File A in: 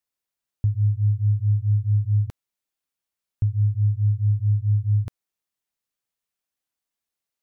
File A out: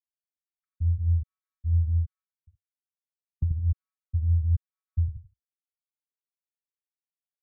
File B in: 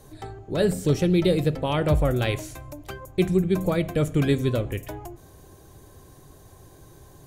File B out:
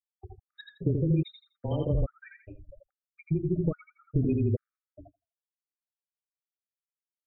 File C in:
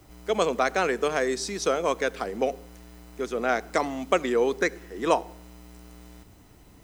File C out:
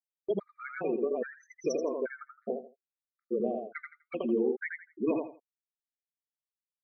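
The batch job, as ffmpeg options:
-af "afreqshift=-19,afftfilt=real='re*gte(hypot(re,im),0.126)':imag='im*gte(hypot(re,im),0.126)':win_size=1024:overlap=0.75,acompressor=threshold=-25dB:ratio=12,equalizer=f=990:t=o:w=1.3:g=-14.5,aecho=1:1:83|166|249:0.631|0.151|0.0363,flanger=delay=1.7:depth=6:regen=-79:speed=0.65:shape=triangular,agate=range=-20dB:threshold=-58dB:ratio=16:detection=peak,afftfilt=real='re*gt(sin(2*PI*1.2*pts/sr)*(1-2*mod(floor(b*sr/1024/1200),2)),0)':imag='im*gt(sin(2*PI*1.2*pts/sr)*(1-2*mod(floor(b*sr/1024/1200),2)),0)':win_size=1024:overlap=0.75,volume=7.5dB"

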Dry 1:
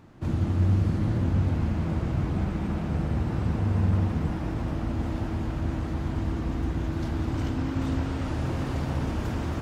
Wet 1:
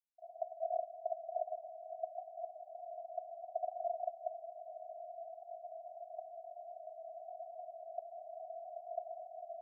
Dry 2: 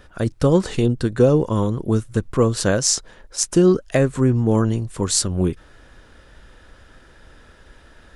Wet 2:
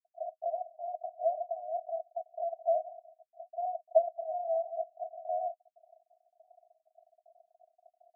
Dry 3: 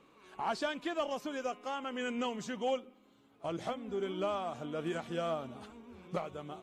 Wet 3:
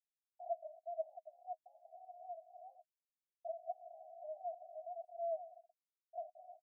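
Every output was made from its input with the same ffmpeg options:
-af "acrusher=bits=4:dc=4:mix=0:aa=0.000001,asuperpass=centerf=680:order=8:qfactor=6.7,volume=4dB"

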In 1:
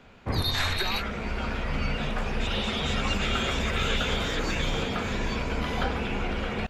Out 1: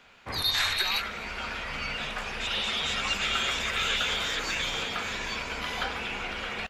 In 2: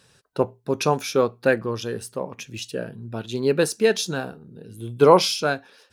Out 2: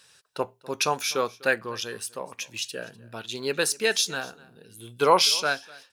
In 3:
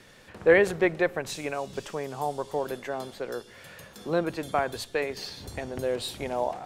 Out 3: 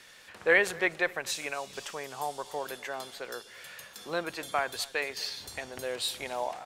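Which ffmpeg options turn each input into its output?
-filter_complex "[0:a]tiltshelf=f=660:g=-8.5,asplit=2[a][b];[b]aecho=0:1:249:0.075[c];[a][c]amix=inputs=2:normalize=0,volume=-5dB"

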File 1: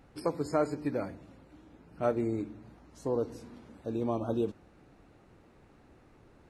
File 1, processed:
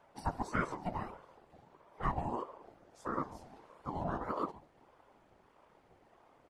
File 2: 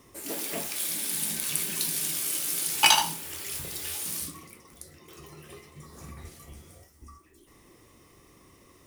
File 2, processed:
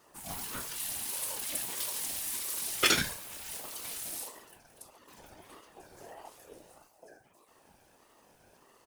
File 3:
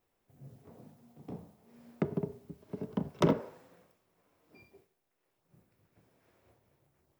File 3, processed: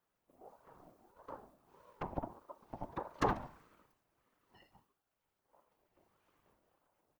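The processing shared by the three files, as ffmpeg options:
-af "aecho=1:1:141:0.1,afftfilt=real='hypot(re,im)*cos(2*PI*random(0))':imag='hypot(re,im)*sin(2*PI*random(1))':win_size=512:overlap=0.75,aeval=exprs='val(0)*sin(2*PI*610*n/s+610*0.3/1.6*sin(2*PI*1.6*n/s))':c=same,volume=3dB"

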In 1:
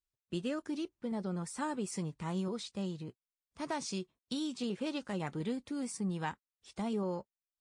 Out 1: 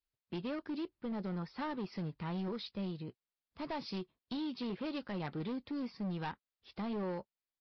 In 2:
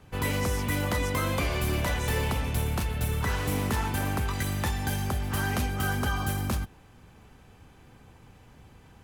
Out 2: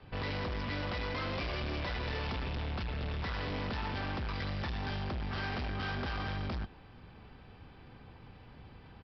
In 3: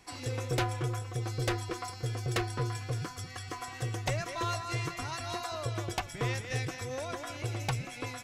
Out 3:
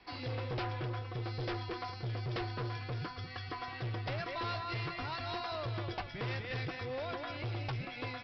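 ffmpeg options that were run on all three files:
-af "adynamicequalizer=threshold=0.00501:dfrequency=120:dqfactor=1.8:tfrequency=120:tqfactor=1.8:attack=5:release=100:ratio=0.375:range=2:mode=cutabove:tftype=bell,aresample=11025,volume=34.5dB,asoftclip=hard,volume=-34.5dB,aresample=44100"

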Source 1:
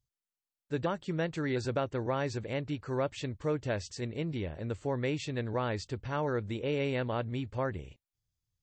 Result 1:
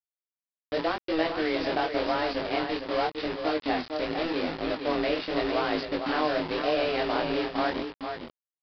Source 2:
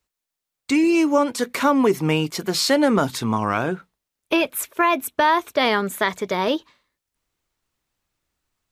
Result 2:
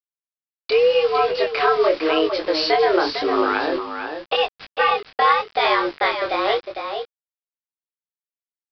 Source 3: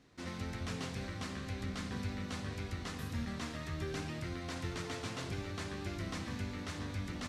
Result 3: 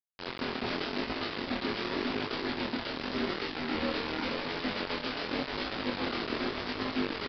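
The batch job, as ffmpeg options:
-filter_complex "[0:a]asplit=2[a][b];[b]acompressor=threshold=-29dB:ratio=16,volume=2dB[c];[a][c]amix=inputs=2:normalize=0,afreqshift=160,aresample=16000,acrusher=bits=4:mix=0:aa=0.000001,aresample=44100,aresample=11025,aresample=44100,aecho=1:1:454:0.447,flanger=delay=18.5:depth=8:speed=0.87,volume=1dB"

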